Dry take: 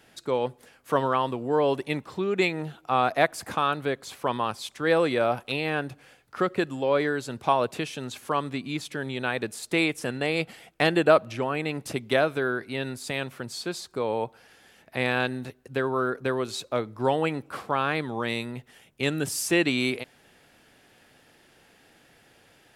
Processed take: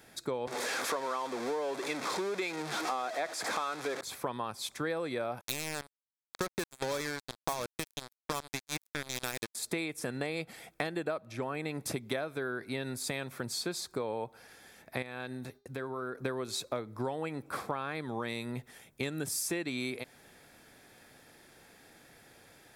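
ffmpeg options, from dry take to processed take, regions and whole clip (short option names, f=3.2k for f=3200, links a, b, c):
-filter_complex "[0:a]asettb=1/sr,asplit=3[a][b][c];[a]atrim=end=0.474[d];[b]atrim=start=0.47:end=4.01,asetpts=PTS-STARTPTS,afade=t=in:d=0.004:c=qsin,afade=t=out:st=3.536:d=0.004:c=qsin,aeval=exprs='val(0)+0.5*0.0668*sgn(val(0))':c=same,highpass=360,lowpass=7k[e];[c]atrim=start=4.006[f];[d][e]acrossfade=d=0.004:c1=hsin:c2=qsin[g];[g][f]acrossfade=d=0.004:c1=qsin:c2=hsin,asettb=1/sr,asplit=3[h][i][j];[h]atrim=end=5.414[k];[i]atrim=start=5.41:end=9.55,asetpts=PTS-STARTPTS,afade=t=in:d=0.004:c=qsin,afade=t=out:st=4.136:d=0.004:c=qsin,acrusher=bits=3:mix=0:aa=0.5,highshelf=f=4k:g=9[l];[j]atrim=start=9.546[m];[k][l]acrossfade=d=0.004:c1=hsin:c2=qsin[n];[n][m]acrossfade=d=0.004:c1=qsin:c2=hsin,asettb=1/sr,asplit=3[o][p][q];[o]atrim=end=15.024[r];[p]atrim=start=15.02:end=16.2,asetpts=PTS-STARTPTS,afade=t=in:d=0.004:c=qsin,afade=t=out:st=1.176:d=0.004:c=qsin,agate=range=-33dB:threshold=-53dB:ratio=3:release=100:detection=peak,acompressor=threshold=-42dB:ratio=2:attack=3.2:release=140:knee=1:detection=peak,bandreject=f=405.4:t=h:w=4,bandreject=f=810.8:t=h:w=4,bandreject=f=1.2162k:t=h:w=4,bandreject=f=1.6216k:t=h:w=4,bandreject=f=2.027k:t=h:w=4,bandreject=f=2.4324k:t=h:w=4,bandreject=f=2.8378k:t=h:w=4,bandreject=f=3.2432k:t=h:w=4,bandreject=f=3.6486k:t=h:w=4,bandreject=f=4.054k:t=h:w=4,bandreject=f=4.4594k:t=h:w=4,bandreject=f=4.8648k:t=h:w=4,bandreject=f=5.2702k:t=h:w=4,bandreject=f=5.6756k:t=h:w=4,bandreject=f=6.081k:t=h:w=4,bandreject=f=6.4864k:t=h:w=4[s];[q]atrim=start=16.196[t];[r][s]acrossfade=d=0.004:c1=hsin:c2=qsin[u];[u][t]acrossfade=d=0.004:c1=qsin:c2=hsin,highshelf=f=9.8k:g=7,bandreject=f=2.9k:w=5.6,acompressor=threshold=-31dB:ratio=10"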